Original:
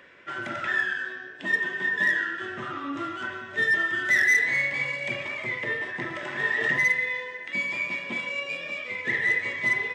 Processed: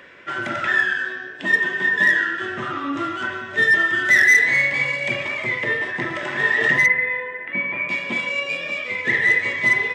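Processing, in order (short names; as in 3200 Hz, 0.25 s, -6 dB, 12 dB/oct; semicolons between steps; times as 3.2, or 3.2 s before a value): 6.86–7.89 LPF 2300 Hz 24 dB/oct; gain +7 dB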